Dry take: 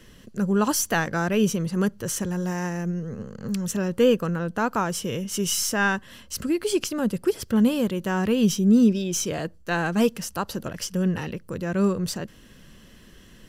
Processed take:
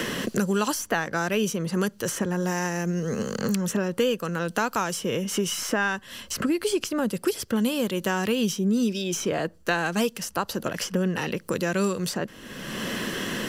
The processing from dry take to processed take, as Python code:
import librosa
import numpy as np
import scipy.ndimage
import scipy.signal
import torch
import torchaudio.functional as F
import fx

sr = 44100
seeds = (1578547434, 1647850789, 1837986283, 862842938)

y = fx.low_shelf(x, sr, hz=160.0, db=-12.0)
y = fx.band_squash(y, sr, depth_pct=100)